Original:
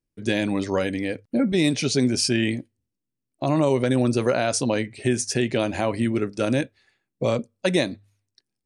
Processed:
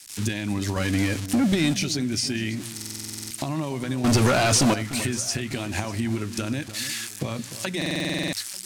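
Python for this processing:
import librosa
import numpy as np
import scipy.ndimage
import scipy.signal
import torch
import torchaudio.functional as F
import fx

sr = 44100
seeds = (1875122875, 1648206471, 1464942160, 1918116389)

y = x + 0.5 * 10.0 ** (-24.5 / 20.0) * np.diff(np.sign(x), prepend=np.sign(x[:1]))
y = fx.recorder_agc(y, sr, target_db=-11.5, rise_db_per_s=71.0, max_gain_db=30)
y = fx.peak_eq(y, sr, hz=500.0, db=-11.0, octaves=0.92)
y = fx.leveller(y, sr, passes=5, at=(4.04, 4.74))
y = fx.peak_eq(y, sr, hz=100.0, db=8.0, octaves=0.22)
y = fx.leveller(y, sr, passes=2, at=(0.76, 1.74))
y = scipy.signal.sosfilt(scipy.signal.butter(2, 8600.0, 'lowpass', fs=sr, output='sos'), y)
y = fx.hum_notches(y, sr, base_hz=60, count=3)
y = fx.echo_alternate(y, sr, ms=298, hz=1400.0, feedback_pct=60, wet_db=-13.0)
y = fx.buffer_glitch(y, sr, at_s=(2.75, 7.77), block=2048, repeats=11)
y = F.gain(torch.from_numpy(y), -5.0).numpy()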